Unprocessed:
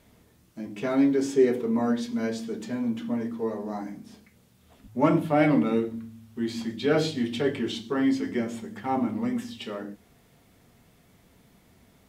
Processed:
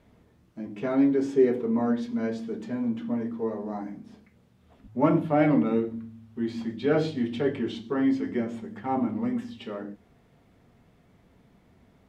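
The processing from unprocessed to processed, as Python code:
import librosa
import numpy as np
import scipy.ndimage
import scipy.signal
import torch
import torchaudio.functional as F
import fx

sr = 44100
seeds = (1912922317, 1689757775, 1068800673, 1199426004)

y = fx.lowpass(x, sr, hz=1700.0, slope=6)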